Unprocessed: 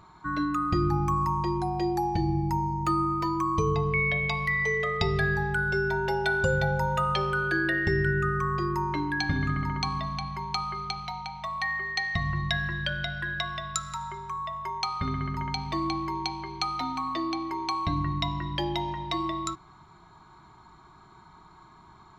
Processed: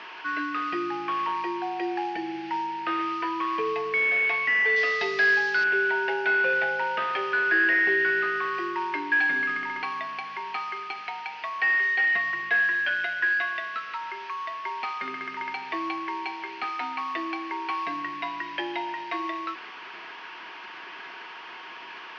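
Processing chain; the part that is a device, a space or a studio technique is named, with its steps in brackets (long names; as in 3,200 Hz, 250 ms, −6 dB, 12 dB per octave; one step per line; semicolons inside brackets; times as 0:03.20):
digital answering machine (band-pass filter 350–3,200 Hz; linear delta modulator 32 kbit/s, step −38.5 dBFS; loudspeaker in its box 440–3,900 Hz, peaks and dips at 570 Hz −9 dB, 830 Hz −7 dB, 1,200 Hz −8 dB, 1,700 Hz +5 dB, 2,600 Hz +5 dB, 3,800 Hz −9 dB)
0:04.76–0:05.64: flat-topped bell 6,100 Hz +12.5 dB
level +7 dB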